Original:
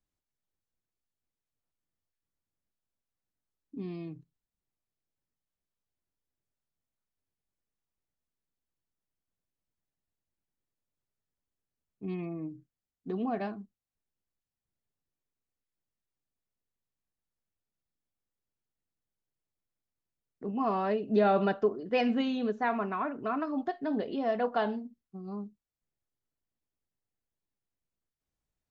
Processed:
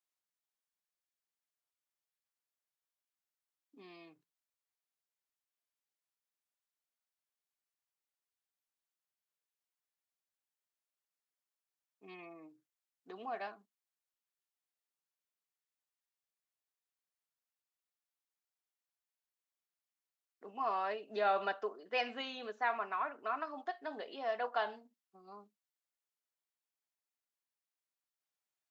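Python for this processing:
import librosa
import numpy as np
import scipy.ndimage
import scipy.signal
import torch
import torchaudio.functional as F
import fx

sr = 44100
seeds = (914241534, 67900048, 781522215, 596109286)

y = scipy.signal.sosfilt(scipy.signal.butter(2, 780.0, 'highpass', fs=sr, output='sos'), x)
y = F.gain(torch.from_numpy(y), -1.5).numpy()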